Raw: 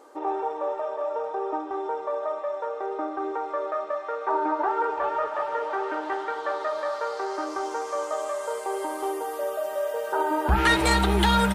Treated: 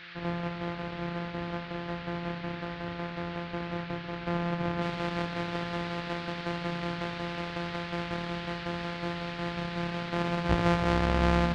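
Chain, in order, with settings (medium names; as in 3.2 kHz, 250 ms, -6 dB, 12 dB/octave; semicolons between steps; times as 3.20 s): sorted samples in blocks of 256 samples; bass shelf 330 Hz -6 dB; band noise 1.4–4.7 kHz -36 dBFS; tape spacing loss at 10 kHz 42 dB, from 4.81 s at 10 kHz 28 dB; feedback echo behind a low-pass 76 ms, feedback 83%, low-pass 490 Hz, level -10 dB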